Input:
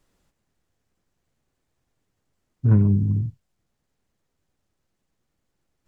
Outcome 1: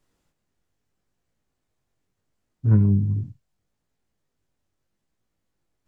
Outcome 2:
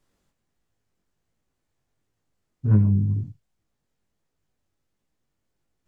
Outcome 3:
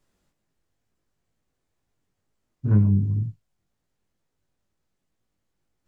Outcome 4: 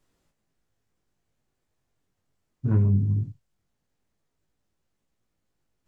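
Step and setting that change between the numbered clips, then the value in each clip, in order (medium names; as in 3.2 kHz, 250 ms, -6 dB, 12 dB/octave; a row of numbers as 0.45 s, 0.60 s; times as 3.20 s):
chorus, rate: 0.76 Hz, 1.4 Hz, 2.1 Hz, 0.2 Hz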